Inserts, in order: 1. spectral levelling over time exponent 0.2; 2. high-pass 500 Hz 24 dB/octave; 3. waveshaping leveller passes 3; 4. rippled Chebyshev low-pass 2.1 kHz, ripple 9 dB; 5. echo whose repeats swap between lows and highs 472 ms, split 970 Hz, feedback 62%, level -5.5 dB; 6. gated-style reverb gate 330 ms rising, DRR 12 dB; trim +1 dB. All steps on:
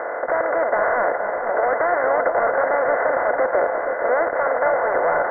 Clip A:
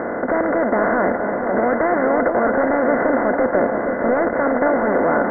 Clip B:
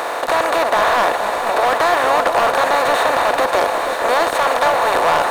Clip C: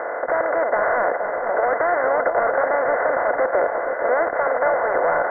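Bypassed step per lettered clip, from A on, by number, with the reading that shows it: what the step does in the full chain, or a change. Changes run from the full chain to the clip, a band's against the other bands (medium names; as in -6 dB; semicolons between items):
2, 250 Hz band +16.5 dB; 4, 500 Hz band -4.5 dB; 6, echo-to-direct -6.0 dB to -7.5 dB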